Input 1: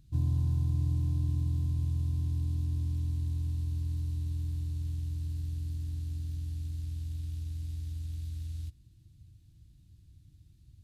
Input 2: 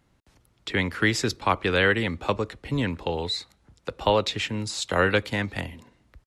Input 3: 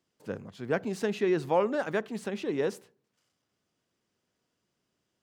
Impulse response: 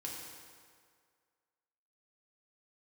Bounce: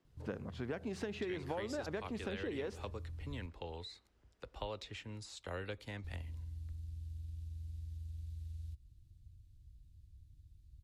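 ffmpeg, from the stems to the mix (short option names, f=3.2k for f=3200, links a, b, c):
-filter_complex "[0:a]acompressor=threshold=-40dB:ratio=4,adelay=50,volume=-9dB,asplit=3[a][b][c];[a]atrim=end=3.46,asetpts=PTS-STARTPTS,afade=t=out:st=3.456:d=0.004:c=hsin[d];[b]atrim=start=3.46:end=6.04,asetpts=PTS-STARTPTS,volume=0[e];[c]atrim=start=6.04,asetpts=PTS-STARTPTS,afade=t=in:d=0.004:c=hsin[f];[d][e][f]concat=n=3:v=0:a=1[g];[1:a]adelay=550,volume=-17dB[h];[2:a]aemphasis=mode=reproduction:type=75fm,acompressor=threshold=-30dB:ratio=6,volume=2.5dB[i];[g][h][i]amix=inputs=3:normalize=0,asubboost=boost=5:cutoff=71,acrossover=split=890|2500[j][k][l];[j]acompressor=threshold=-39dB:ratio=4[m];[k]acompressor=threshold=-52dB:ratio=4[n];[l]acompressor=threshold=-50dB:ratio=4[o];[m][n][o]amix=inputs=3:normalize=0"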